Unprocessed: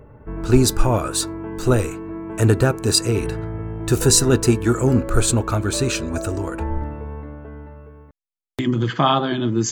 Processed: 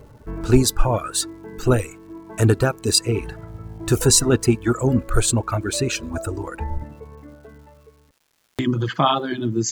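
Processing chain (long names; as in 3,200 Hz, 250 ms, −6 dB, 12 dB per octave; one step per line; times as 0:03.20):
reverb reduction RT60 1.8 s
surface crackle 430 per second −49 dBFS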